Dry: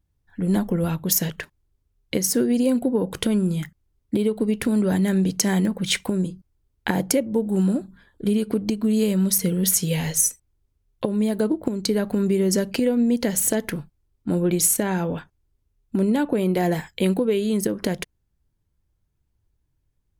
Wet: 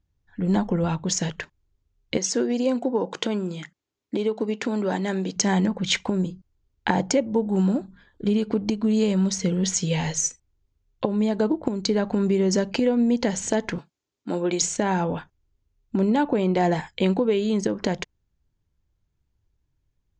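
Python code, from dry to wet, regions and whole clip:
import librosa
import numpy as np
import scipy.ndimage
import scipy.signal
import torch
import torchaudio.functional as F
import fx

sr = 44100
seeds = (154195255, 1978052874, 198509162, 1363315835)

y = fx.chain(x, sr, fx.highpass(hz=270.0, slope=12),
    fx.resample_bad(factor=2, down='none', up='filtered'), at=(2.17, 5.36))
y = fx.chain(y, sr, fx.highpass(hz=280.0, slope=12),
    fx.high_shelf(hz=3700.0, db=7.5), at=(13.78, 14.62))
y = scipy.signal.sosfilt(scipy.signal.ellip(4, 1.0, 50, 7000.0, 'lowpass', fs=sr, output='sos'), y)
y = fx.dynamic_eq(y, sr, hz=870.0, q=2.1, threshold_db=-44.0, ratio=4.0, max_db=7)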